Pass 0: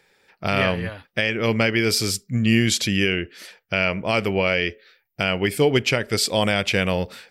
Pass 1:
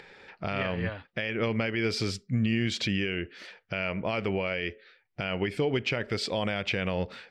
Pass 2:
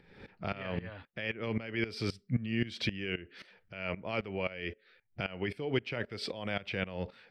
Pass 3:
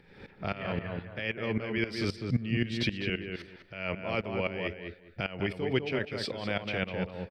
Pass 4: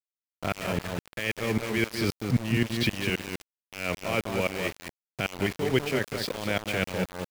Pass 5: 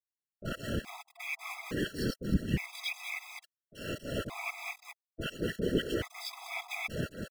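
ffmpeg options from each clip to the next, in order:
ffmpeg -i in.wav -af "lowpass=3600,acompressor=mode=upward:threshold=-38dB:ratio=2.5,alimiter=limit=-16.5dB:level=0:latency=1:release=145,volume=-2dB" out.wav
ffmpeg -i in.wav -filter_complex "[0:a]equalizer=frequency=6900:width=4.6:gain=-13,acrossover=split=280|1700[link_01][link_02][link_03];[link_01]acompressor=mode=upward:threshold=-36dB:ratio=2.5[link_04];[link_04][link_02][link_03]amix=inputs=3:normalize=0,aeval=exprs='val(0)*pow(10,-18*if(lt(mod(-3.8*n/s,1),2*abs(-3.8)/1000),1-mod(-3.8*n/s,1)/(2*abs(-3.8)/1000),(mod(-3.8*n/s,1)-2*abs(-3.8)/1000)/(1-2*abs(-3.8)/1000))/20)':channel_layout=same" out.wav
ffmpeg -i in.wav -filter_complex "[0:a]asplit=2[link_01][link_02];[link_02]adelay=202,lowpass=frequency=1900:poles=1,volume=-4dB,asplit=2[link_03][link_04];[link_04]adelay=202,lowpass=frequency=1900:poles=1,volume=0.22,asplit=2[link_05][link_06];[link_06]adelay=202,lowpass=frequency=1900:poles=1,volume=0.22[link_07];[link_01][link_03][link_05][link_07]amix=inputs=4:normalize=0,volume=2.5dB" out.wav
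ffmpeg -i in.wav -af "aeval=exprs='val(0)*gte(abs(val(0)),0.0178)':channel_layout=same,volume=4dB" out.wav
ffmpeg -i in.wav -filter_complex "[0:a]acrossover=split=660[link_01][link_02];[link_02]adelay=30[link_03];[link_01][link_03]amix=inputs=2:normalize=0,afftfilt=real='hypot(re,im)*cos(2*PI*random(0))':imag='hypot(re,im)*sin(2*PI*random(1))':win_size=512:overlap=0.75,afftfilt=real='re*gt(sin(2*PI*0.58*pts/sr)*(1-2*mod(floor(b*sr/1024/660),2)),0)':imag='im*gt(sin(2*PI*0.58*pts/sr)*(1-2*mod(floor(b*sr/1024/660),2)),0)':win_size=1024:overlap=0.75,volume=2dB" out.wav

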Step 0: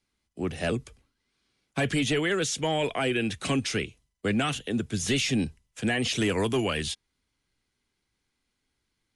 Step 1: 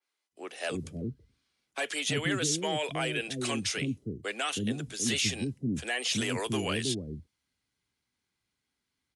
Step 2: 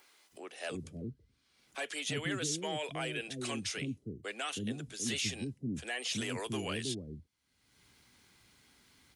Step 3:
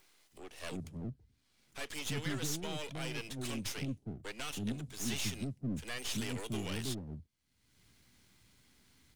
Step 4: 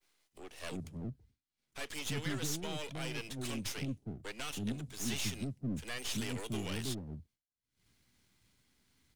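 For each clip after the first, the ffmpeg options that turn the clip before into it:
ffmpeg -i in.wav -filter_complex "[0:a]highpass=74,acrossover=split=390[link_01][link_02];[link_01]adelay=320[link_03];[link_03][link_02]amix=inputs=2:normalize=0,adynamicequalizer=threshold=0.00631:dfrequency=3400:dqfactor=0.7:tfrequency=3400:tqfactor=0.7:attack=5:release=100:ratio=0.375:range=2.5:mode=boostabove:tftype=highshelf,volume=-3.5dB" out.wav
ffmpeg -i in.wav -af "acompressor=mode=upward:threshold=-38dB:ratio=2.5,volume=-6dB" out.wav
ffmpeg -i in.wav -filter_complex "[0:a]equalizer=frequency=900:width_type=o:width=1.6:gain=-4,acrossover=split=260[link_01][link_02];[link_02]aeval=exprs='max(val(0),0)':channel_layout=same[link_03];[link_01][link_03]amix=inputs=2:normalize=0,volume=2dB" out.wav
ffmpeg -i in.wav -af "agate=range=-33dB:threshold=-59dB:ratio=3:detection=peak" out.wav

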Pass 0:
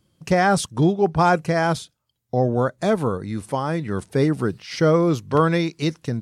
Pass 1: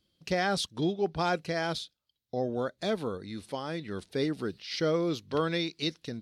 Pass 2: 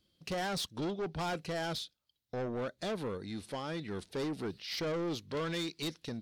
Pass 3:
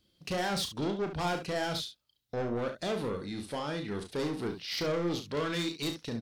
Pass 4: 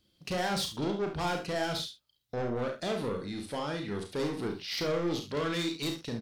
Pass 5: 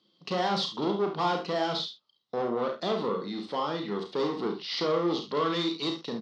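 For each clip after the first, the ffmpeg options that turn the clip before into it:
ffmpeg -i in.wav -af "equalizer=frequency=125:width_type=o:width=1:gain=-9,equalizer=frequency=1000:width_type=o:width=1:gain=-6,equalizer=frequency=4000:width_type=o:width=1:gain=11,equalizer=frequency=8000:width_type=o:width=1:gain=-6,volume=-8.5dB" out.wav
ffmpeg -i in.wav -af "asoftclip=type=tanh:threshold=-32dB" out.wav
ffmpeg -i in.wav -af "aecho=1:1:34|70:0.447|0.335,volume=2.5dB" out.wav
ffmpeg -i in.wav -filter_complex "[0:a]asplit=2[link_01][link_02];[link_02]adelay=49,volume=-9dB[link_03];[link_01][link_03]amix=inputs=2:normalize=0" out.wav
ffmpeg -i in.wav -af "highpass=frequency=190:width=0.5412,highpass=frequency=190:width=1.3066,equalizer=frequency=270:width_type=q:width=4:gain=-6,equalizer=frequency=600:width_type=q:width=4:gain=-4,equalizer=frequency=1100:width_type=q:width=4:gain=6,equalizer=frequency=1600:width_type=q:width=4:gain=-9,equalizer=frequency=2400:width_type=q:width=4:gain=-9,lowpass=frequency=4700:width=0.5412,lowpass=frequency=4700:width=1.3066,volume=5.5dB" out.wav

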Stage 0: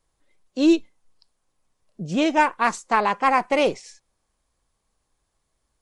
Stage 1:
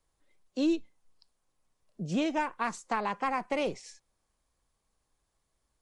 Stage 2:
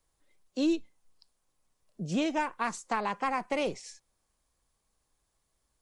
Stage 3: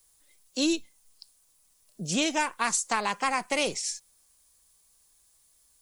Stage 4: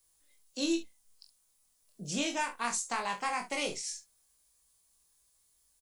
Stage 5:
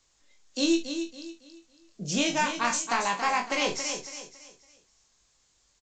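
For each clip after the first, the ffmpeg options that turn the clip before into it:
ffmpeg -i in.wav -filter_complex "[0:a]acrossover=split=210[link_01][link_02];[link_02]acompressor=threshold=-25dB:ratio=3[link_03];[link_01][link_03]amix=inputs=2:normalize=0,volume=-4.5dB" out.wav
ffmpeg -i in.wav -af "highshelf=frequency=5200:gain=4.5" out.wav
ffmpeg -i in.wav -af "crystalizer=i=6:c=0" out.wav
ffmpeg -i in.wav -af "aecho=1:1:21|42|69:0.596|0.335|0.211,volume=-8dB" out.wav
ffmpeg -i in.wav -af "aecho=1:1:278|556|834|1112:0.376|0.124|0.0409|0.0135,volume=6.5dB" -ar 16000 -c:a pcm_alaw out.wav

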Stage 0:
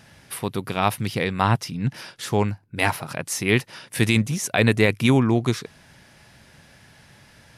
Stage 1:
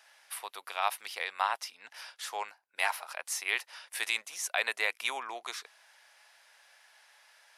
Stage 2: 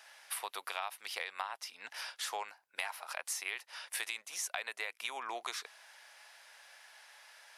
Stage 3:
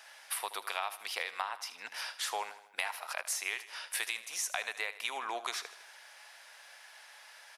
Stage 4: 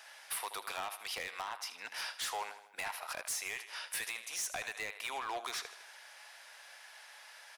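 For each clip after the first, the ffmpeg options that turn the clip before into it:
ffmpeg -i in.wav -af "highpass=frequency=700:width=0.5412,highpass=frequency=700:width=1.3066,volume=-7dB" out.wav
ffmpeg -i in.wav -af "acompressor=threshold=-38dB:ratio=16,volume=3.5dB" out.wav
ffmpeg -i in.wav -af "aecho=1:1:78|156|234|312|390:0.178|0.096|0.0519|0.028|0.0151,volume=3dB" out.wav
ffmpeg -i in.wav -af "volume=33dB,asoftclip=hard,volume=-33dB" out.wav

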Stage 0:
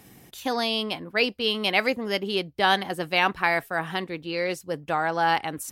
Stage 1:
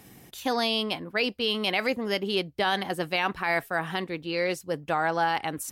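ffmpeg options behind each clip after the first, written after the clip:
ffmpeg -i in.wav -af "alimiter=limit=-15dB:level=0:latency=1:release=41" out.wav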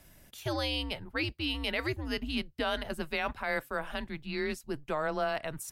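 ffmpeg -i in.wav -af "afreqshift=-150,volume=-6dB" out.wav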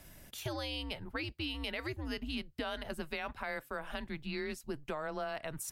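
ffmpeg -i in.wav -af "acompressor=threshold=-39dB:ratio=4,volume=2.5dB" out.wav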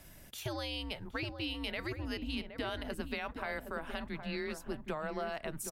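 ffmpeg -i in.wav -filter_complex "[0:a]asplit=2[link_01][link_02];[link_02]adelay=768,lowpass=frequency=850:poles=1,volume=-6dB,asplit=2[link_03][link_04];[link_04]adelay=768,lowpass=frequency=850:poles=1,volume=0.33,asplit=2[link_05][link_06];[link_06]adelay=768,lowpass=frequency=850:poles=1,volume=0.33,asplit=2[link_07][link_08];[link_08]adelay=768,lowpass=frequency=850:poles=1,volume=0.33[link_09];[link_01][link_03][link_05][link_07][link_09]amix=inputs=5:normalize=0" out.wav

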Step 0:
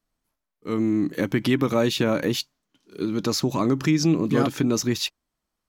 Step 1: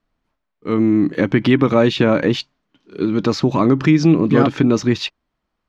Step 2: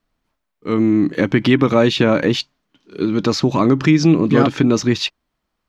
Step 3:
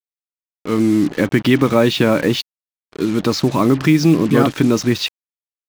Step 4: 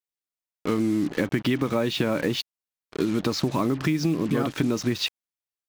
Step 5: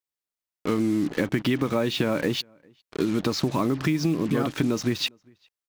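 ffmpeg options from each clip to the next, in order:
ffmpeg -i in.wav -af "lowpass=3200,volume=7.5dB" out.wav
ffmpeg -i in.wav -af "highshelf=frequency=4000:gain=7" out.wav
ffmpeg -i in.wav -af "acrusher=bits=4:mix=0:aa=0.5" out.wav
ffmpeg -i in.wav -af "acompressor=threshold=-21dB:ratio=6" out.wav
ffmpeg -i in.wav -filter_complex "[0:a]asplit=2[link_01][link_02];[link_02]adelay=402.3,volume=-30dB,highshelf=frequency=4000:gain=-9.05[link_03];[link_01][link_03]amix=inputs=2:normalize=0" out.wav

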